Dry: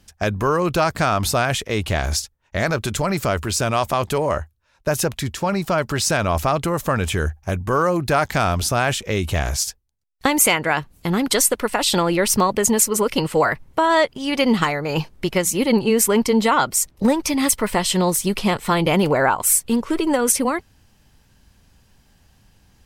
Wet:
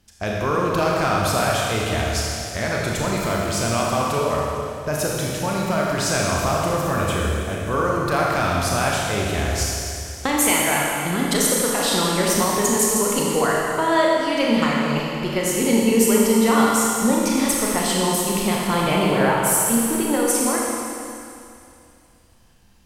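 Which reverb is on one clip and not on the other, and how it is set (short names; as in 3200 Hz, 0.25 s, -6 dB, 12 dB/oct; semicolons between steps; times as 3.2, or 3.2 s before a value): Schroeder reverb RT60 2.6 s, combs from 27 ms, DRR -3.5 dB; gain -5.5 dB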